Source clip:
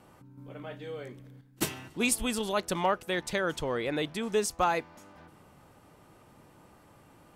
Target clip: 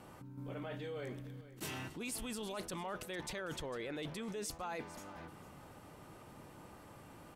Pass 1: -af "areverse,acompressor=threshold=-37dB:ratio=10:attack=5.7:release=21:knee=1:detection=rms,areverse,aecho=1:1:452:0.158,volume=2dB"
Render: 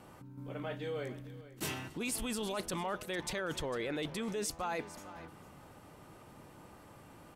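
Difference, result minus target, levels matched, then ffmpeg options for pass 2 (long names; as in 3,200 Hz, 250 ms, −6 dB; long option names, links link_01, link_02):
downward compressor: peak gain reduction −5.5 dB
-af "areverse,acompressor=threshold=-43dB:ratio=10:attack=5.7:release=21:knee=1:detection=rms,areverse,aecho=1:1:452:0.158,volume=2dB"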